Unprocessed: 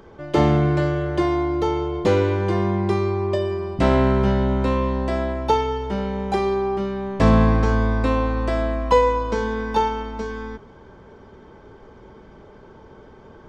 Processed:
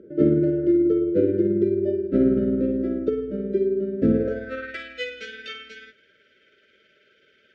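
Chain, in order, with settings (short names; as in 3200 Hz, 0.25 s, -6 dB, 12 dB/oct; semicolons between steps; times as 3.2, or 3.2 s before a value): brick-wall FIR band-stop 640–1300 Hz; granular stretch 0.56×, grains 0.108 s; band-pass sweep 310 Hz -> 2700 Hz, 4.1–4.83; gain +6.5 dB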